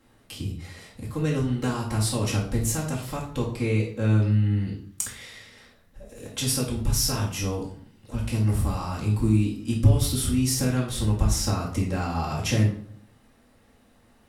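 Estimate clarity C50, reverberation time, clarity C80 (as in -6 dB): 6.0 dB, 0.60 s, 11.0 dB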